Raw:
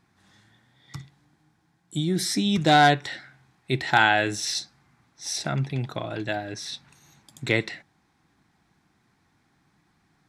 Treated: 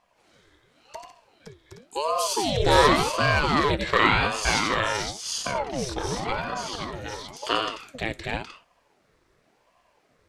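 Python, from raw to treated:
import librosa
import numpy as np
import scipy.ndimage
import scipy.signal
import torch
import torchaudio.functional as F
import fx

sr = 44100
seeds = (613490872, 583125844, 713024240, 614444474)

y = fx.echo_multitap(x, sr, ms=(86, 91, 155, 518, 769, 823), db=(-10.0, -6.0, -13.0, -4.5, -6.5, -10.0))
y = fx.ring_lfo(y, sr, carrier_hz=530.0, swing_pct=65, hz=0.92)
y = F.gain(torch.from_numpy(y), 1.0).numpy()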